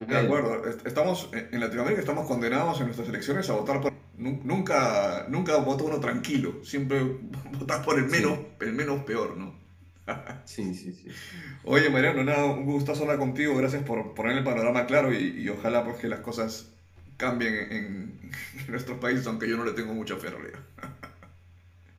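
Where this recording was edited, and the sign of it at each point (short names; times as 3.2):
3.89 sound cut off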